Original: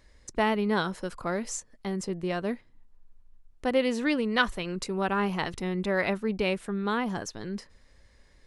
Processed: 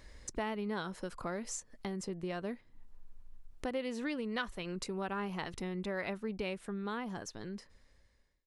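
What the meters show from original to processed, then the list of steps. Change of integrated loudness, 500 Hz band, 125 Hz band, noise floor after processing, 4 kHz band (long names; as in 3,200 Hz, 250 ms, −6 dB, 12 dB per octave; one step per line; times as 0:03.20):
−10.0 dB, −10.0 dB, −8.5 dB, −68 dBFS, −10.0 dB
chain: fade-out on the ending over 1.98 s
downward compressor 2.5 to 1, threshold −46 dBFS, peak gain reduction 18 dB
level +4 dB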